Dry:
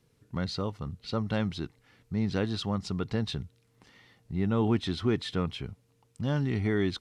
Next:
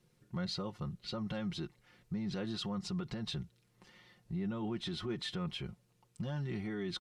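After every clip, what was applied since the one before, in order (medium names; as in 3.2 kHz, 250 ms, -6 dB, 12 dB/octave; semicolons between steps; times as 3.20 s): peak limiter -27.5 dBFS, peak gain reduction 11.5 dB; comb 5.6 ms, depth 70%; trim -4 dB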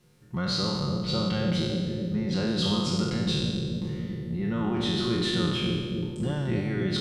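spectral sustain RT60 1.52 s; bucket-brigade echo 278 ms, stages 1024, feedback 78%, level -3 dB; trim +6.5 dB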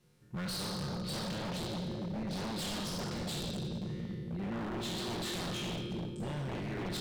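wavefolder -26 dBFS; trim -6.5 dB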